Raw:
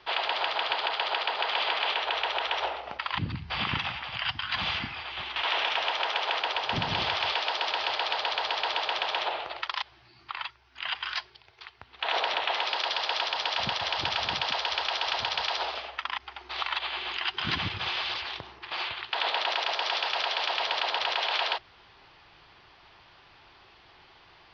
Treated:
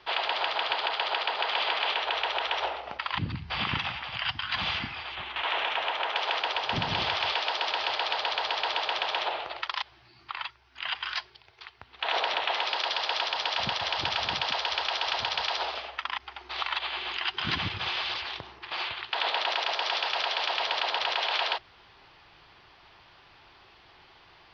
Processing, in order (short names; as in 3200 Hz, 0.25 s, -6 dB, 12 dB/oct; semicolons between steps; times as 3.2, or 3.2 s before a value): 5.15–6.16 bell 5200 Hz -11 dB 0.77 oct